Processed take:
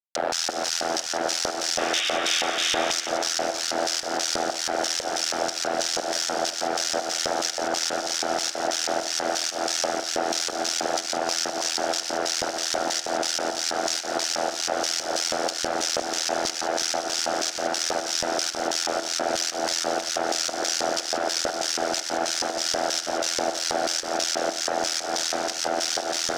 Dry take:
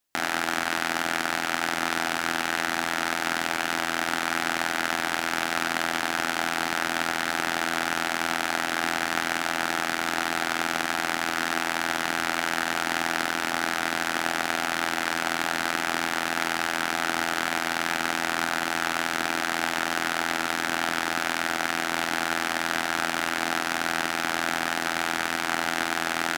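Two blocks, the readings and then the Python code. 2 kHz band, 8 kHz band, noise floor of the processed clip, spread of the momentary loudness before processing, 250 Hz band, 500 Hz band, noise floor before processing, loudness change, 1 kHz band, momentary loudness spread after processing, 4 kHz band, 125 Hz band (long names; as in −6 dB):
−7.0 dB, +8.5 dB, −33 dBFS, 0 LU, −1.5 dB, +7.0 dB, −30 dBFS, +1.0 dB, −1.0 dB, 2 LU, +4.5 dB, −6.5 dB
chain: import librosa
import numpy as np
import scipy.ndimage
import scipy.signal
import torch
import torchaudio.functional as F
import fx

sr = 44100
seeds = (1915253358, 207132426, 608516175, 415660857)

p1 = fx.highpass(x, sr, hz=290.0, slope=6)
p2 = fx.high_shelf_res(p1, sr, hz=7000.0, db=-10.5, q=3.0)
p3 = fx.fuzz(p2, sr, gain_db=35.0, gate_db=-37.0)
p4 = fx.volume_shaper(p3, sr, bpm=120, per_beat=1, depth_db=-15, release_ms=201.0, shape='fast start')
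p5 = fx.spec_paint(p4, sr, seeds[0], shape='noise', start_s=1.78, length_s=1.14, low_hz=1100.0, high_hz=3800.0, level_db=-17.0)
p6 = fx.filter_lfo_bandpass(p5, sr, shape='square', hz=3.1, low_hz=530.0, high_hz=6000.0, q=3.0)
p7 = p6 + fx.echo_split(p6, sr, split_hz=2300.0, low_ms=369, high_ms=173, feedback_pct=52, wet_db=-10.0, dry=0)
y = p7 * librosa.db_to_amplitude(5.5)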